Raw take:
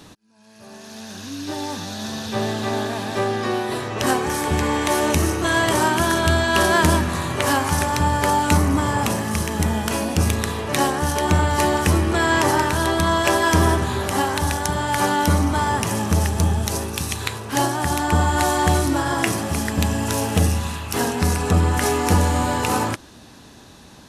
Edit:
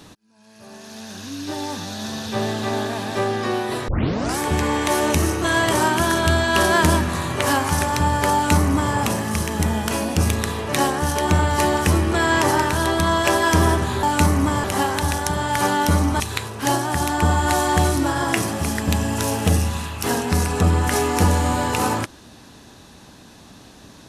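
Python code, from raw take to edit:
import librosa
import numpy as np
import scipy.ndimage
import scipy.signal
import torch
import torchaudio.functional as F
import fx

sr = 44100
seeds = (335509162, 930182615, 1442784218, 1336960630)

y = fx.edit(x, sr, fx.tape_start(start_s=3.88, length_s=0.5),
    fx.duplicate(start_s=8.34, length_s=0.61, to_s=14.03),
    fx.cut(start_s=15.59, length_s=1.51), tone=tone)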